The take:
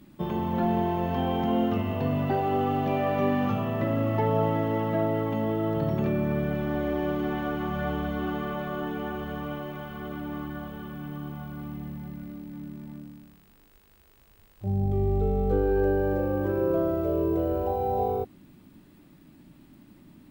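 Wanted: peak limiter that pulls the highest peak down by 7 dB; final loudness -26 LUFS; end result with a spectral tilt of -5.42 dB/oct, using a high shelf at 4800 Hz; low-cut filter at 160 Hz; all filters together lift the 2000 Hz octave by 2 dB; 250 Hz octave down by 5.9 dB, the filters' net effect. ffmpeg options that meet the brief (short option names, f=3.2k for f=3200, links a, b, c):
-af "highpass=160,equalizer=f=250:t=o:g=-7,equalizer=f=2k:t=o:g=3.5,highshelf=f=4.8k:g=-5,volume=6dB,alimiter=limit=-16dB:level=0:latency=1"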